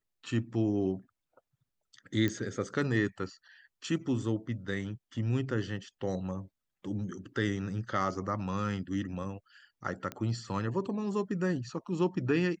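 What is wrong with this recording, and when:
0:02.28: click −19 dBFS
0:10.12: click −22 dBFS

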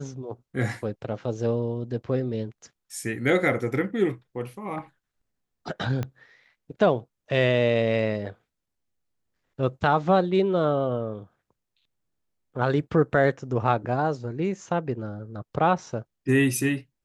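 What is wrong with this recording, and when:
0:06.03: click −17 dBFS

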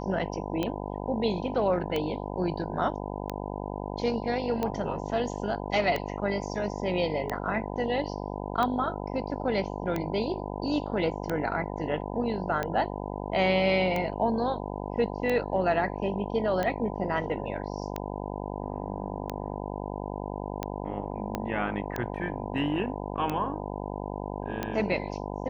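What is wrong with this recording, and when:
mains buzz 50 Hz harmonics 20 −35 dBFS
scratch tick 45 rpm −16 dBFS
0:21.35: click −15 dBFS

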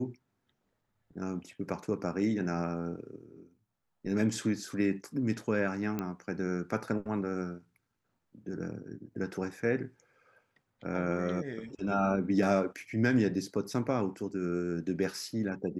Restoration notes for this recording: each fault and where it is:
0:05.99: click −20 dBFS

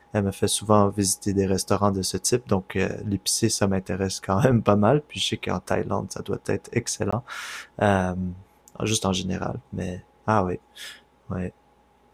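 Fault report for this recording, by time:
0:07.11–0:07.12: drop-out 15 ms

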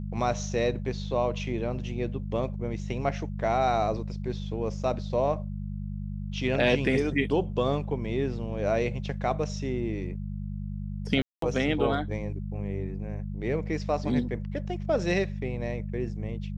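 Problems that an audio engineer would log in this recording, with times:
mains hum 50 Hz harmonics 4 −34 dBFS
0:11.22–0:11.42: drop-out 203 ms

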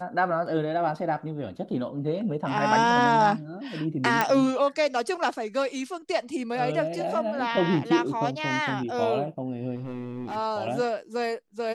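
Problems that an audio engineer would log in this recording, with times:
0:04.21: click −8 dBFS
0:09.75–0:10.37: clipping −29 dBFS

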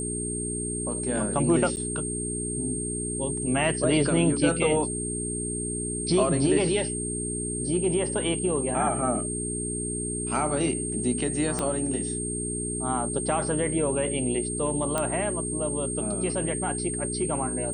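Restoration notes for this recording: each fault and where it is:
mains hum 60 Hz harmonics 7 −33 dBFS
whistle 8,600 Hz −31 dBFS
0:01.76–0:01.77: drop-out 9 ms
0:11.59: click −13 dBFS
0:14.98: click −12 dBFS

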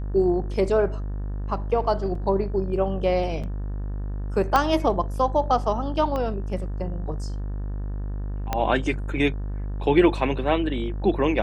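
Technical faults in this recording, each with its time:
mains buzz 50 Hz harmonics 37 −29 dBFS
0:02.15: drop-out 3.9 ms
0:03.43–0:03.44: drop-out 6.2 ms
0:04.56: click −7 dBFS
0:06.16: click −17 dBFS
0:08.53: click −10 dBFS

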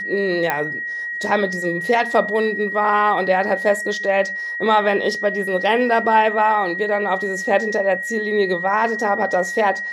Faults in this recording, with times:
whistle 1,900 Hz −24 dBFS
0:00.50: click −6 dBFS

